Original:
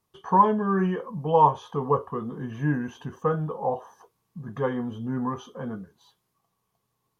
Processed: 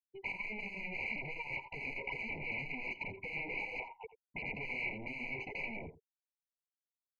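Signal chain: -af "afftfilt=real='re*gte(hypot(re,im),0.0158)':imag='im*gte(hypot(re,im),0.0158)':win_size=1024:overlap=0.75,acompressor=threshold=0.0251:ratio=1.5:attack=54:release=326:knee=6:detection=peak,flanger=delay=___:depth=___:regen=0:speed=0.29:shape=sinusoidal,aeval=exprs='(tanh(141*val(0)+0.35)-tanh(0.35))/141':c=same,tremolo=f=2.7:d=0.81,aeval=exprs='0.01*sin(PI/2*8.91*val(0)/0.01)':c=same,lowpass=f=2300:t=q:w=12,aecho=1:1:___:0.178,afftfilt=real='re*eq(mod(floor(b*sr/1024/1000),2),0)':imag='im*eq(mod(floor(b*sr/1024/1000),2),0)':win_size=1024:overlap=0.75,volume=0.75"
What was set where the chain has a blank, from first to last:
9.8, 5.3, 85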